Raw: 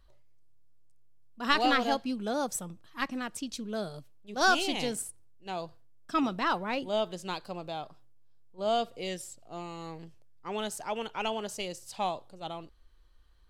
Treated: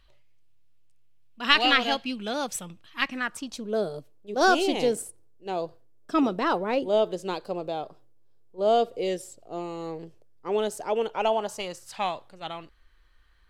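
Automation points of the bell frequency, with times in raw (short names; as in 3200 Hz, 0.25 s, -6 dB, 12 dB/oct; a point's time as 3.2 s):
bell +12 dB 1.3 oct
3.06 s 2700 Hz
3.78 s 440 Hz
11.02 s 440 Hz
12.03 s 1900 Hz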